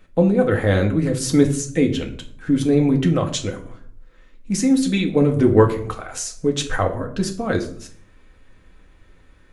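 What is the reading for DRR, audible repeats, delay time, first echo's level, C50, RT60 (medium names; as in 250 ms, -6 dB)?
2.0 dB, no echo, no echo, no echo, 12.0 dB, 0.55 s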